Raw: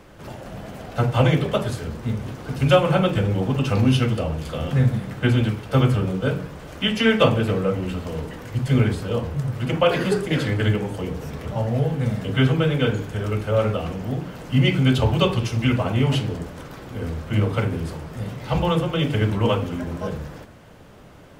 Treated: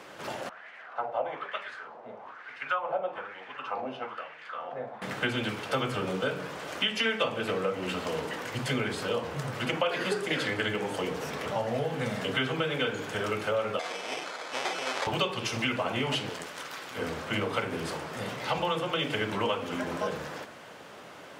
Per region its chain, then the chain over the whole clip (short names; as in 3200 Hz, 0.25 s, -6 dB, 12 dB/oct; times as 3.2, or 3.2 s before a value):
0.49–5.02 high shelf 5800 Hz -6 dB + wah 1.1 Hz 640–2000 Hz, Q 3.6
13.79–15.07 sample-rate reducer 2800 Hz + overloaded stage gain 22.5 dB + BPF 520–7000 Hz
16.29–16.98 tilt shelf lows -5.5 dB + tube stage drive 26 dB, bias 0.7
whole clip: weighting filter A; compressor 4:1, threshold -31 dBFS; gain +4 dB